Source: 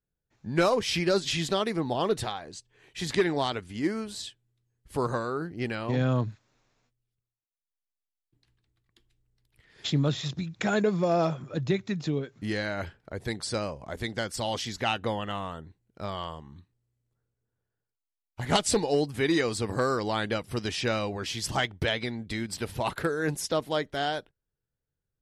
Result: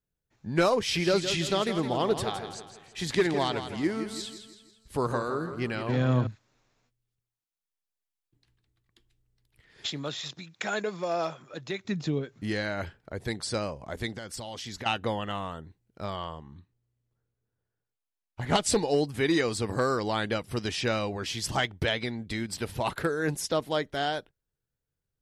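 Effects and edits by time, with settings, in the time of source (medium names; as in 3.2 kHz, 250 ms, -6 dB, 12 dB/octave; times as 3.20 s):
0.79–6.27 s: feedback delay 164 ms, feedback 45%, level -9.5 dB
9.86–11.85 s: high-pass 790 Hz 6 dB/octave
14.14–14.86 s: compression 10:1, threshold -34 dBFS
16.16–18.62 s: treble shelf 5.1 kHz -8.5 dB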